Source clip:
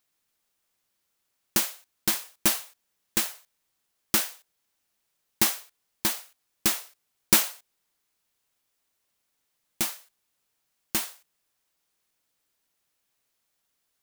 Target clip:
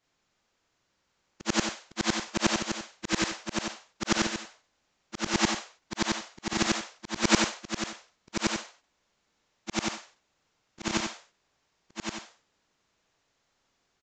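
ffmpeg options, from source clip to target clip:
ffmpeg -i in.wav -filter_complex "[0:a]afftfilt=real='re':imag='-im':win_size=8192:overlap=0.75,asplit=2[link_01][link_02];[link_02]acompressor=threshold=-42dB:ratio=6,volume=-1.5dB[link_03];[link_01][link_03]amix=inputs=2:normalize=0,aresample=16000,aresample=44100,highshelf=frequency=2200:gain=-8,aecho=1:1:1120:0.501,volume=9dB" out.wav

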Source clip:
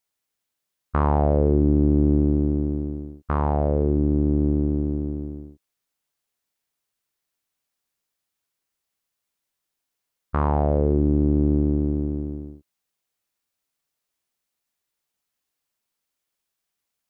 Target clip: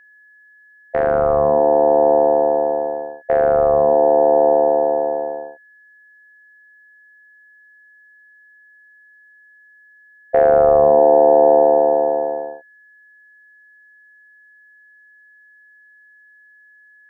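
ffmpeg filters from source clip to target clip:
ffmpeg -i in.wav -af "asubboost=boost=5:cutoff=180,aeval=exprs='val(0)*sin(2*PI*600*n/s)':channel_layout=same,aeval=exprs='val(0)+0.00398*sin(2*PI*1700*n/s)':channel_layout=same,volume=1dB" out.wav

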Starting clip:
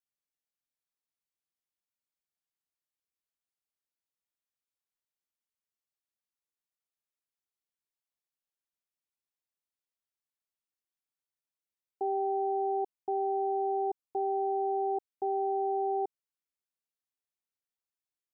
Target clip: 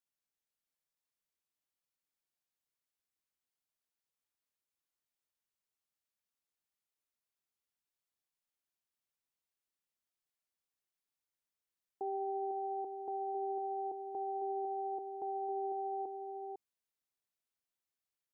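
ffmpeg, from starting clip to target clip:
ffmpeg -i in.wav -filter_complex "[0:a]alimiter=level_in=6.5dB:limit=-24dB:level=0:latency=1,volume=-6.5dB,asplit=2[link_01][link_02];[link_02]aecho=0:1:501:0.473[link_03];[link_01][link_03]amix=inputs=2:normalize=0,volume=-1dB" out.wav

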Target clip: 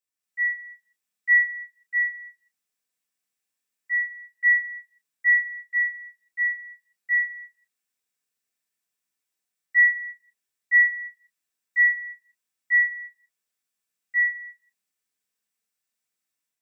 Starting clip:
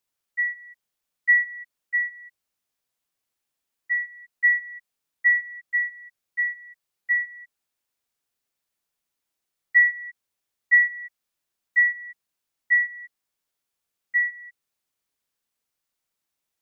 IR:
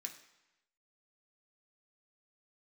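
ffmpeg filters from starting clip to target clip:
-filter_complex "[0:a]dynaudnorm=framelen=100:gausssize=5:maxgain=6.5dB[link_01];[1:a]atrim=start_sample=2205,afade=type=out:start_time=0.27:duration=0.01,atrim=end_sample=12348[link_02];[link_01][link_02]afir=irnorm=-1:irlink=0,volume=-5dB"

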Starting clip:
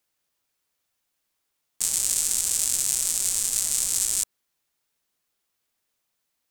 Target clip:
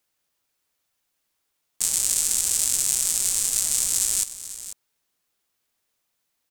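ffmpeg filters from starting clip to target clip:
ffmpeg -i in.wav -af "aecho=1:1:493:0.211,volume=1.5dB" out.wav

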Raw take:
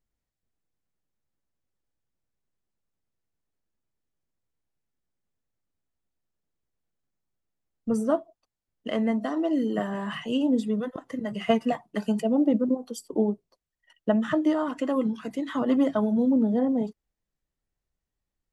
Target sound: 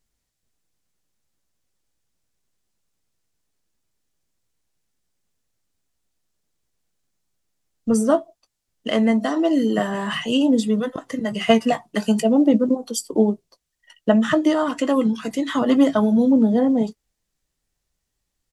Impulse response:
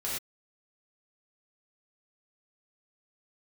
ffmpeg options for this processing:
-filter_complex "[0:a]equalizer=frequency=7000:width=0.4:gain=8.5,asplit=2[link_01][link_02];[link_02]adelay=18,volume=-14dB[link_03];[link_01][link_03]amix=inputs=2:normalize=0,volume=6dB"

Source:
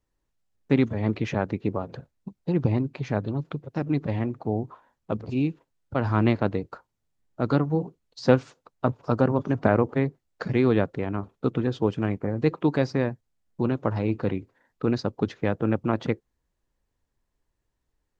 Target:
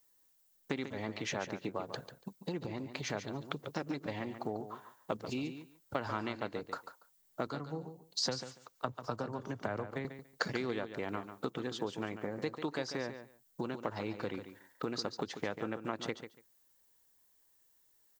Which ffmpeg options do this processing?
ffmpeg -i in.wav -filter_complex "[0:a]asettb=1/sr,asplit=3[link_01][link_02][link_03];[link_01]atrim=end=7.474[link_04];[link_02]atrim=start=7.47:end=10.05,asetpts=PTS-STARTPTS,afade=type=in:duration=0.004:curve=qsin,afade=type=out:start_time=2.576:duration=0.004:curve=qsin,acrossover=split=140[link_05][link_06];[link_06]acompressor=threshold=-47dB:ratio=1.5[link_07];[link_05][link_07]amix=inputs=2:normalize=0[link_08];[link_03]atrim=start=10.046[link_09];[link_04][link_08]acrossfade=duration=0.004:curve1=hsin:curve2=qsin[link_10];[link_10][link_09]acrossfade=duration=0.004:curve1=qsin:curve2=hsin,bandreject=frequency=2500:width=15,acompressor=threshold=-30dB:ratio=12,aemphasis=mode=production:type=riaa,aecho=1:1:143|286:0.316|0.0506,volume=2dB" out.wav

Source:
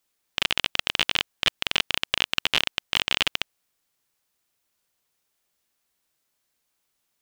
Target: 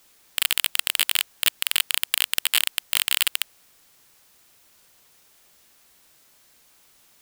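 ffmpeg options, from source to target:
ffmpeg -i in.wav -af "aeval=exprs='0.794*sin(PI/2*10*val(0)/0.794)':channel_layout=same,volume=-5.5dB" out.wav

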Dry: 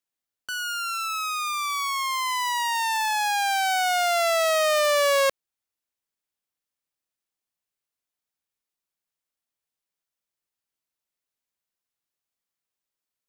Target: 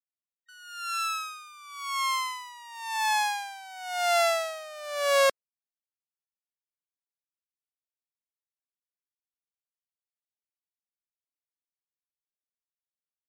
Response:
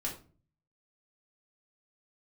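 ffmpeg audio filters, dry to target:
-filter_complex "[0:a]asplit=2[link_01][link_02];[link_02]asetrate=55563,aresample=44100,atempo=0.793701,volume=-18dB[link_03];[link_01][link_03]amix=inputs=2:normalize=0,afftdn=noise_reduction=35:noise_floor=-38,aeval=exprs='val(0)*pow(10,-21*(0.5-0.5*cos(2*PI*0.95*n/s))/20)':channel_layout=same"

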